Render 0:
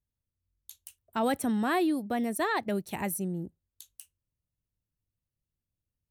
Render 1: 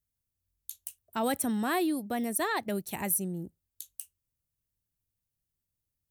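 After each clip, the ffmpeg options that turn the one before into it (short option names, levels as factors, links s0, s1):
-af "highshelf=f=6400:g=11.5,volume=0.794"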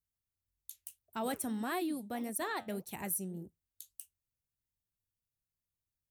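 -af "flanger=delay=0.8:depth=9.9:regen=-76:speed=1.7:shape=sinusoidal,volume=0.75"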